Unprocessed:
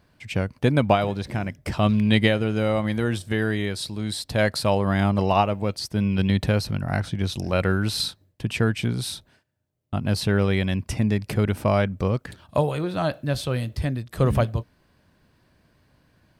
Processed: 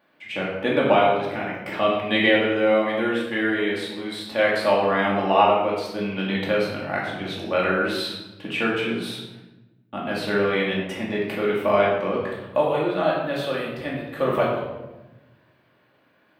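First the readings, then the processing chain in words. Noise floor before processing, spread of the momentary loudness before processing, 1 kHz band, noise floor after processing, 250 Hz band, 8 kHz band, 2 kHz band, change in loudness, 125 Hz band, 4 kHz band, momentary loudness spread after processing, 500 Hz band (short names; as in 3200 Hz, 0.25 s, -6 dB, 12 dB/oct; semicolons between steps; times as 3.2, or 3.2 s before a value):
-63 dBFS, 9 LU, +4.5 dB, -61 dBFS, -2.0 dB, -10.0 dB, +5.0 dB, +1.0 dB, -12.0 dB, +0.5 dB, 12 LU, +4.5 dB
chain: HPF 360 Hz 12 dB/oct; band shelf 7300 Hz -13 dB; shoebox room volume 480 m³, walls mixed, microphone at 2.4 m; gain -1.5 dB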